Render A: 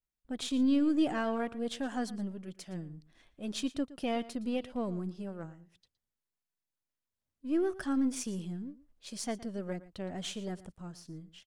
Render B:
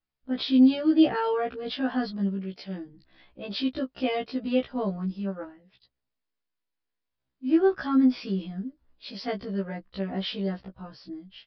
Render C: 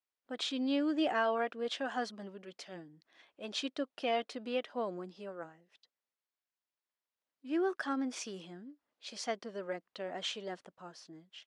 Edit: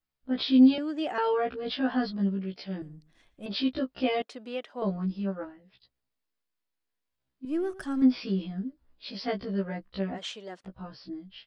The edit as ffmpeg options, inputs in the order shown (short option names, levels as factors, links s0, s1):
-filter_complex "[2:a]asplit=3[s0][s1][s2];[0:a]asplit=2[s3][s4];[1:a]asplit=6[s5][s6][s7][s8][s9][s10];[s5]atrim=end=0.782[s11];[s0]atrim=start=0.778:end=1.182[s12];[s6]atrim=start=1.178:end=2.822[s13];[s3]atrim=start=2.818:end=3.462[s14];[s7]atrim=start=3.458:end=4.222[s15];[s1]atrim=start=4.218:end=4.822[s16];[s8]atrim=start=4.818:end=7.452[s17];[s4]atrim=start=7.448:end=8.022[s18];[s9]atrim=start=8.018:end=10.19[s19];[s2]atrim=start=10.13:end=10.69[s20];[s10]atrim=start=10.63[s21];[s11][s12]acrossfade=d=0.004:c1=hsin:c2=hsin[s22];[s22][s13]acrossfade=d=0.004:c1=hsin:c2=hsin[s23];[s23][s14]acrossfade=d=0.004:c1=hsin:c2=hsin[s24];[s24][s15]acrossfade=d=0.004:c1=hsin:c2=hsin[s25];[s25][s16]acrossfade=d=0.004:c1=hsin:c2=hsin[s26];[s26][s17]acrossfade=d=0.004:c1=hsin:c2=hsin[s27];[s27][s18]acrossfade=d=0.004:c1=hsin:c2=hsin[s28];[s28][s19]acrossfade=d=0.004:c1=hsin:c2=hsin[s29];[s29][s20]acrossfade=d=0.06:c1=tri:c2=tri[s30];[s30][s21]acrossfade=d=0.06:c1=tri:c2=tri"